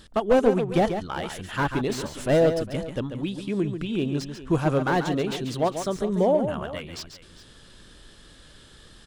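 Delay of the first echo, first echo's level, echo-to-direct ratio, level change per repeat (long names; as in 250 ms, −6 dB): 140 ms, −8.5 dB, −8.0 dB, repeats not evenly spaced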